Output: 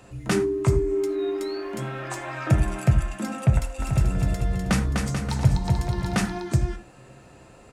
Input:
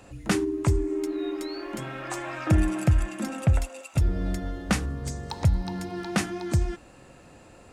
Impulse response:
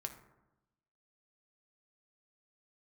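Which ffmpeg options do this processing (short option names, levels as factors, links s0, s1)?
-filter_complex "[0:a]asplit=3[s0][s1][s2];[s0]afade=t=out:st=3.78:d=0.02[s3];[s1]aecho=1:1:250|437.5|578.1|683.6|762.7:0.631|0.398|0.251|0.158|0.1,afade=t=in:st=3.78:d=0.02,afade=t=out:st=6.38:d=0.02[s4];[s2]afade=t=in:st=6.38:d=0.02[s5];[s3][s4][s5]amix=inputs=3:normalize=0[s6];[1:a]atrim=start_sample=2205,afade=t=out:st=0.16:d=0.01,atrim=end_sample=7497[s7];[s6][s7]afir=irnorm=-1:irlink=0,volume=1.5"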